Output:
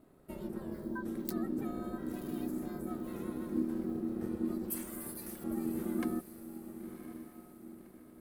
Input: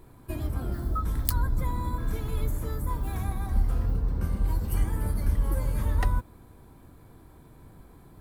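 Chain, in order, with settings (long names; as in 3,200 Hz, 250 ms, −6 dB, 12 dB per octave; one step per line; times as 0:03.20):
0:04.70–0:05.44: RIAA equalisation recording
feedback delay with all-pass diffusion 1,054 ms, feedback 40%, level −10.5 dB
ring modulation 280 Hz
level −8.5 dB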